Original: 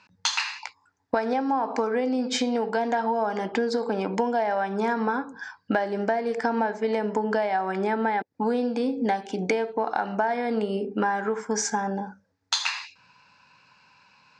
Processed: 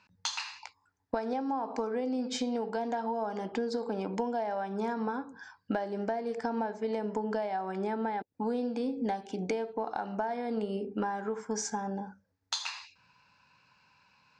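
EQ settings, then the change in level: dynamic bell 1.9 kHz, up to -6 dB, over -41 dBFS, Q 1.3; bass shelf 86 Hz +11 dB; -7.5 dB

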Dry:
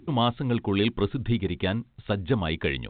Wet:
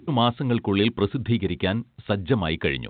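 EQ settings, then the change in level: high-pass 80 Hz; +3.0 dB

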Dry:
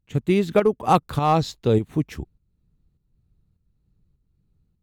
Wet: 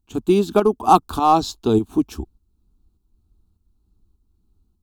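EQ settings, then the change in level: static phaser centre 530 Hz, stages 6; +6.5 dB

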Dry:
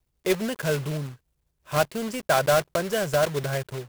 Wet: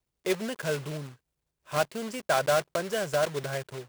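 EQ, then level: bass shelf 110 Hz -11 dB; peaking EQ 13 kHz -7.5 dB 0.26 oct; -3.5 dB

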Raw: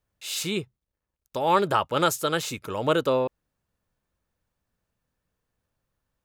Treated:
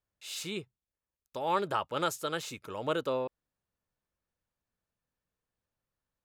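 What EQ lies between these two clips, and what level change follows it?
bass shelf 210 Hz -4 dB; treble shelf 11 kHz -5.5 dB; -8.0 dB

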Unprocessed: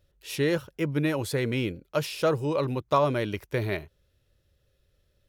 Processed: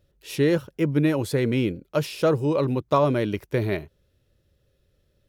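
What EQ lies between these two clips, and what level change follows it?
peaking EQ 240 Hz +6.5 dB 2.4 oct; 0.0 dB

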